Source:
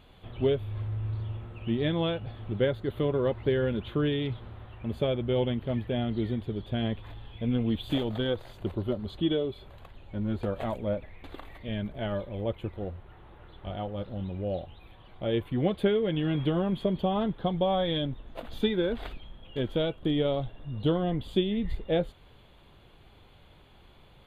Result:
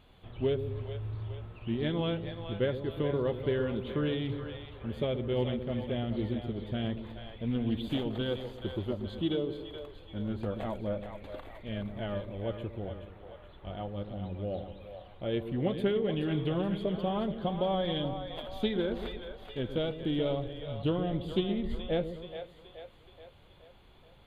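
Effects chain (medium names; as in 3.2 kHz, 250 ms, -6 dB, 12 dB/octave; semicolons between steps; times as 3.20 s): two-band feedback delay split 490 Hz, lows 126 ms, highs 426 ms, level -8 dB; loudspeaker Doppler distortion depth 0.1 ms; trim -4 dB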